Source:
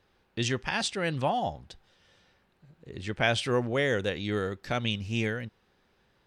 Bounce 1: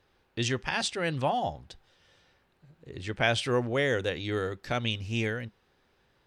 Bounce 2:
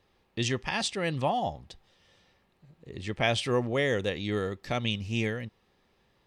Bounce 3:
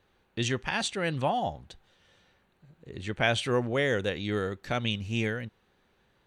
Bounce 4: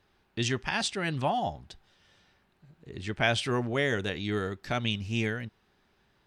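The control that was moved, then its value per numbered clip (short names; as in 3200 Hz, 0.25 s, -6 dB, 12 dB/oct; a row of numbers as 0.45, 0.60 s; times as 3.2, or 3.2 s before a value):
notch, frequency: 200, 1500, 5100, 510 Hz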